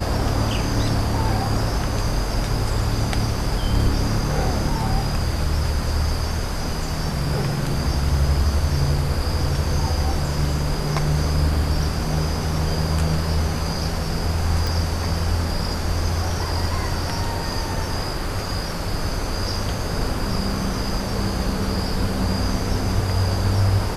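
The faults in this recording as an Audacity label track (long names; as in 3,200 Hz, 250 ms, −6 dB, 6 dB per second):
14.670000	14.670000	click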